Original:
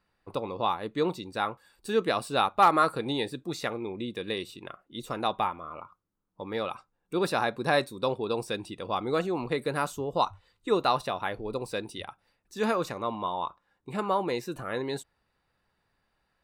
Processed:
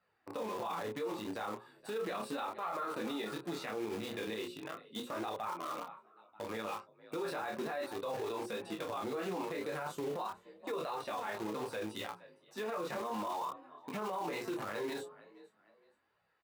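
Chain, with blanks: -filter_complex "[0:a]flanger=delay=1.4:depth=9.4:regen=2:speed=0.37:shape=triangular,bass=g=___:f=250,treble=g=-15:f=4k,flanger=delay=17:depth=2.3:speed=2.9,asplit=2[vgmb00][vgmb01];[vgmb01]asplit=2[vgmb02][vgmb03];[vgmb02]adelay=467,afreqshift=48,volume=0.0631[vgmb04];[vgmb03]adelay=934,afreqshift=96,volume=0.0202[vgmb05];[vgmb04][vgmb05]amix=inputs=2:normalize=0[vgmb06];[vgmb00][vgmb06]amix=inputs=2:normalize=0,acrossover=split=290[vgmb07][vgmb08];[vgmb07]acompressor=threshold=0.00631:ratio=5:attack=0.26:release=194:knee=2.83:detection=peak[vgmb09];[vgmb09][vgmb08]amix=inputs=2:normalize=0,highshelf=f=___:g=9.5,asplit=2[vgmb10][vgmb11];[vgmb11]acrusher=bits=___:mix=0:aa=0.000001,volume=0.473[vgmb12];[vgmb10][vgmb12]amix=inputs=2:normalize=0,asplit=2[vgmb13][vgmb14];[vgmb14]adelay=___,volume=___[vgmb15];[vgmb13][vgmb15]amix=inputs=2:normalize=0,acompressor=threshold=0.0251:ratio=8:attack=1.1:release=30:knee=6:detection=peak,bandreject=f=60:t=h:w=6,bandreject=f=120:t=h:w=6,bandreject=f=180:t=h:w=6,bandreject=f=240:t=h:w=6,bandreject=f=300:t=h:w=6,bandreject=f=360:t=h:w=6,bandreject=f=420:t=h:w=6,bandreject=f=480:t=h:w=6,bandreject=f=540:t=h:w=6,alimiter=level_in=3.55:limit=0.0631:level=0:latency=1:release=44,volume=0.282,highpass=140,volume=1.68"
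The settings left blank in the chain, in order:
-1, 8k, 6, 28, 0.473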